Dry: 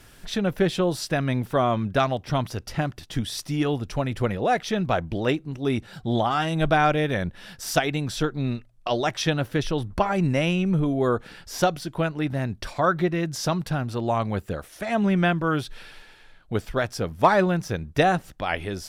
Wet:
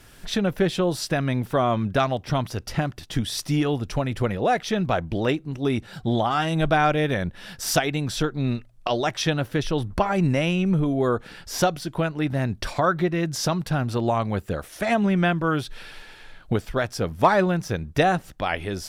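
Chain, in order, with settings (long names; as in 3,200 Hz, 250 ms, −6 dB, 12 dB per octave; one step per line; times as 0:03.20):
camcorder AGC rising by 9.1 dB per second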